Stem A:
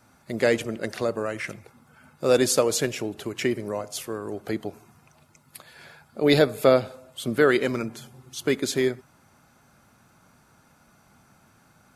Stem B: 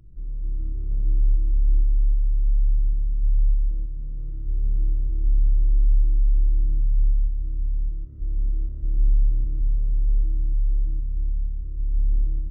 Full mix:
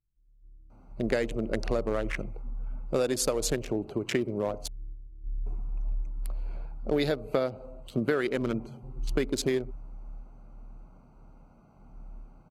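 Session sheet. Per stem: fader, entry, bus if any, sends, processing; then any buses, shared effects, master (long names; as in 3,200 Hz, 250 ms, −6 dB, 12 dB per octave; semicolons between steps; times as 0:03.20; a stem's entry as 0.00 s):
+2.5 dB, 0.70 s, muted 0:04.68–0:05.46, no send, adaptive Wiener filter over 25 samples
0:09.82 −12.5 dB → 0:10.18 −19.5 dB, 0.00 s, no send, expander for the loud parts 2.5 to 1, over −29 dBFS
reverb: not used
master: downward compressor 12 to 1, threshold −23 dBFS, peak gain reduction 14 dB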